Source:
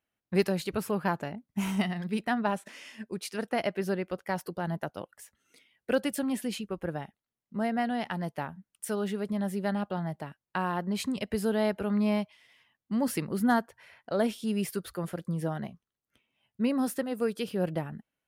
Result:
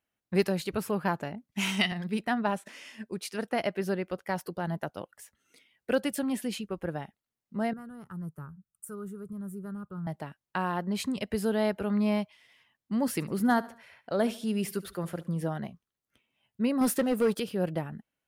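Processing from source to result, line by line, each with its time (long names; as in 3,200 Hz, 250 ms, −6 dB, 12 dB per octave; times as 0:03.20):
0:01.52–0:01.92: meter weighting curve D
0:07.73–0:10.07: drawn EQ curve 160 Hz 0 dB, 250 Hz −14 dB, 390 Hz −8 dB, 750 Hz −26 dB, 1,300 Hz −3 dB, 1,900 Hz −27 dB, 3,300 Hz −29 dB, 5,000 Hz −24 dB, 7,800 Hz −6 dB, 14,000 Hz −4 dB
0:13.13–0:15.44: repeating echo 72 ms, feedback 41%, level −19 dB
0:16.81–0:17.40: leveller curve on the samples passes 2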